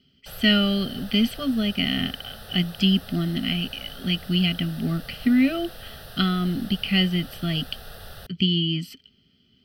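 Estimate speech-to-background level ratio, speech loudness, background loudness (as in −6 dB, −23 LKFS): 18.0 dB, −24.0 LKFS, −42.0 LKFS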